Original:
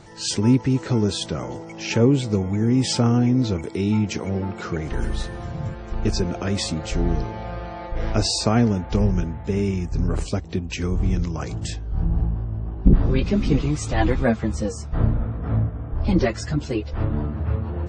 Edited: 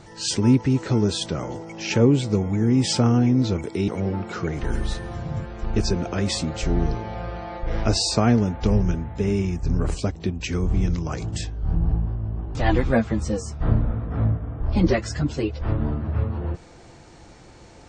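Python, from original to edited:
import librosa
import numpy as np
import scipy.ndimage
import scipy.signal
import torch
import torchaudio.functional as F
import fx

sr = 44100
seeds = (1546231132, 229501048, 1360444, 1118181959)

y = fx.edit(x, sr, fx.cut(start_s=3.88, length_s=0.29),
    fx.cut(start_s=12.84, length_s=1.03), tone=tone)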